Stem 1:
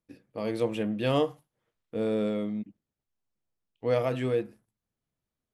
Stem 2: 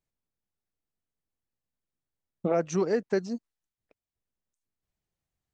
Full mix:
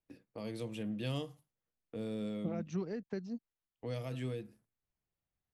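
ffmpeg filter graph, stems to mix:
-filter_complex "[0:a]agate=range=0.224:threshold=0.00141:ratio=16:detection=peak,volume=0.562[s0];[1:a]lowpass=2900,volume=0.631[s1];[s0][s1]amix=inputs=2:normalize=0,acrossover=split=220|3000[s2][s3][s4];[s3]acompressor=threshold=0.00631:ratio=4[s5];[s2][s5][s4]amix=inputs=3:normalize=0"

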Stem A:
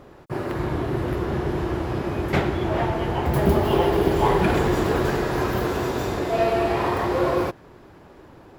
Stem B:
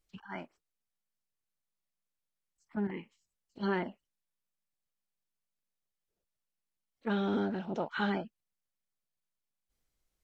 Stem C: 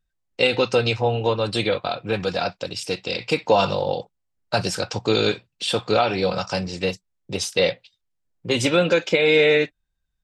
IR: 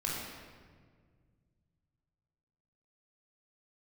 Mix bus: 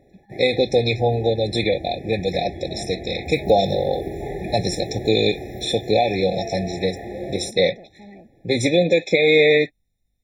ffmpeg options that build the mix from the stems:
-filter_complex "[0:a]volume=0.355[s0];[1:a]acompressor=threshold=0.0158:ratio=6,aeval=exprs='val(0)+0.000112*(sin(2*PI*50*n/s)+sin(2*PI*2*50*n/s)/2+sin(2*PI*3*50*n/s)/3+sin(2*PI*4*50*n/s)/4+sin(2*PI*5*50*n/s)/5)':c=same,asoftclip=type=tanh:threshold=0.0119,volume=1.19[s1];[2:a]volume=1.26,asplit=2[s2][s3];[s3]apad=whole_len=378487[s4];[s0][s4]sidechaincompress=threshold=0.126:ratio=8:attack=16:release=194[s5];[s5][s1][s2]amix=inputs=3:normalize=0,afftfilt=real='re*eq(mod(floor(b*sr/1024/850),2),0)':imag='im*eq(mod(floor(b*sr/1024/850),2),0)':win_size=1024:overlap=0.75"

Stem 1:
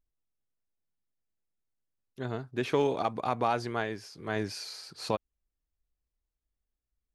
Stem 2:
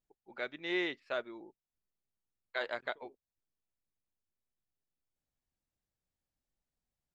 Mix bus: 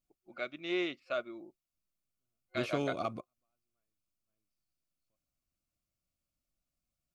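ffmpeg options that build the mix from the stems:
-filter_complex "[0:a]volume=0.668[s0];[1:a]volume=1.26,asplit=2[s1][s2];[s2]apad=whole_len=315080[s3];[s0][s3]sidechaingate=range=0.00178:threshold=0.00126:ratio=16:detection=peak[s4];[s4][s1]amix=inputs=2:normalize=0,superequalizer=7b=0.398:9b=0.282:11b=0.316:13b=0.708"

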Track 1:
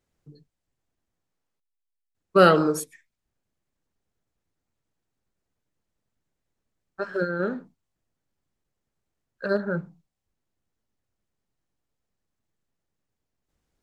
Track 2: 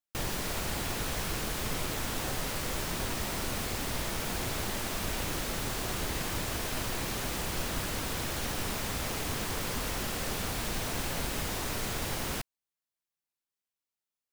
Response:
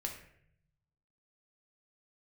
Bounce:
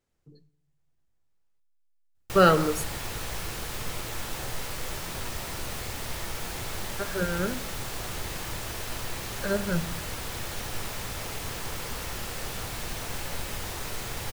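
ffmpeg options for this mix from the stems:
-filter_complex "[0:a]bandreject=f=50:t=h:w=6,bandreject=f=100:t=h:w=6,bandreject=f=150:t=h:w=6,asubboost=boost=6:cutoff=120,volume=0.668,asplit=2[s0][s1];[s1]volume=0.266[s2];[1:a]equalizer=f=260:w=1.2:g=-4.5,adelay=2150,volume=0.596,asplit=2[s3][s4];[s4]volume=0.631[s5];[2:a]atrim=start_sample=2205[s6];[s2][s5]amix=inputs=2:normalize=0[s7];[s7][s6]afir=irnorm=-1:irlink=0[s8];[s0][s3][s8]amix=inputs=3:normalize=0"

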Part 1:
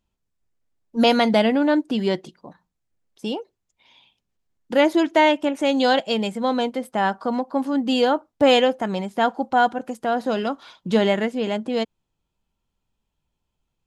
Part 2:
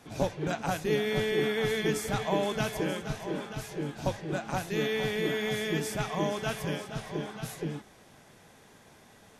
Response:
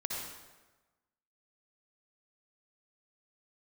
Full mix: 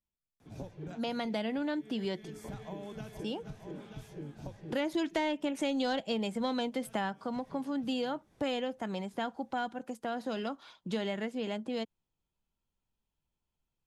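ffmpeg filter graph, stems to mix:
-filter_complex "[0:a]afade=t=in:st=0.95:d=0.56:silence=0.354813,afade=t=in:st=4.66:d=0.46:silence=0.354813,afade=t=out:st=6.91:d=0.26:silence=0.354813,asplit=2[s0][s1];[1:a]lowshelf=f=430:g=11.5,acompressor=threshold=0.0631:ratio=6,adelay=400,volume=0.188[s2];[s1]apad=whole_len=431979[s3];[s2][s3]sidechaincompress=threshold=0.0126:ratio=8:attack=7.3:release=221[s4];[s0][s4]amix=inputs=2:normalize=0,asoftclip=type=tanh:threshold=0.355,acrossover=split=240|1700[s5][s6][s7];[s5]acompressor=threshold=0.0112:ratio=4[s8];[s6]acompressor=threshold=0.0178:ratio=4[s9];[s7]acompressor=threshold=0.00891:ratio=4[s10];[s8][s9][s10]amix=inputs=3:normalize=0"

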